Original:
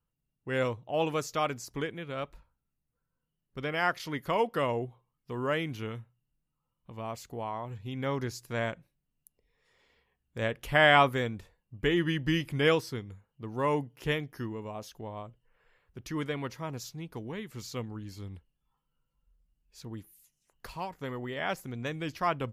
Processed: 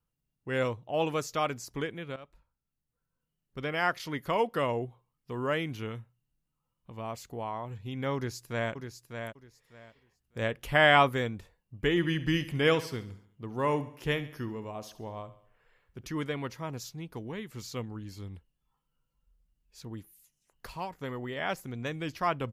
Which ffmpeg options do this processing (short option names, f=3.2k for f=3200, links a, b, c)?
-filter_complex "[0:a]asplit=2[a][b];[b]afade=t=in:st=8.15:d=0.01,afade=t=out:st=8.72:d=0.01,aecho=0:1:600|1200|1800:0.446684|0.0893367|0.0178673[c];[a][c]amix=inputs=2:normalize=0,asettb=1/sr,asplit=3[d][e][f];[d]atrim=end=11.894[g];[e]atrim=start=11.89:end=16.08,asetpts=PTS-STARTPTS,afade=t=in:d=0.004:c=qsin,afade=t=out:st=4.186:d=0.004:c=qsin,aecho=1:1:69|138|207|276|345:0.178|0.0871|0.0427|0.0209|0.0103,atrim=end_sample=184779[h];[f]atrim=start=16.076[i];[g][h]acrossfade=d=0.004:c1=hsin:c2=qsin[j];[j][i]acrossfade=d=0.004:c1=qsin:c2=hsin,asplit=2[k][l];[k]atrim=end=2.16,asetpts=PTS-STARTPTS,afade=t=out:st=2.156:d=0.004:c=hsin:silence=0.177828[m];[l]atrim=start=2.16,asetpts=PTS-STARTPTS,afade=t=in:d=1.48:c=qsin:silence=0.177828[n];[m][n]concat=n=2:v=0:a=1"